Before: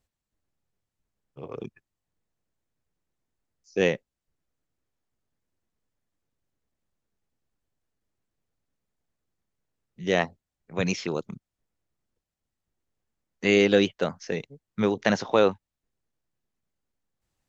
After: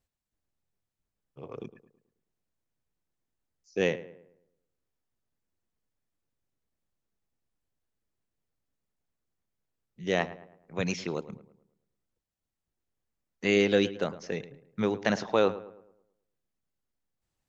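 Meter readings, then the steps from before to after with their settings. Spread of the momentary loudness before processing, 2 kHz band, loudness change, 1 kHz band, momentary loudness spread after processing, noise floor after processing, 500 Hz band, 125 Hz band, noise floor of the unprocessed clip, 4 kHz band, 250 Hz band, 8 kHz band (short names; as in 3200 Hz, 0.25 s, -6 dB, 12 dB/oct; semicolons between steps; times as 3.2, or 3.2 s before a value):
19 LU, -4.0 dB, -4.0 dB, -4.0 dB, 18 LU, under -85 dBFS, -4.0 dB, -4.0 dB, under -85 dBFS, -4.0 dB, -4.0 dB, n/a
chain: darkening echo 0.108 s, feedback 43%, low-pass 2100 Hz, level -15 dB; gain -4 dB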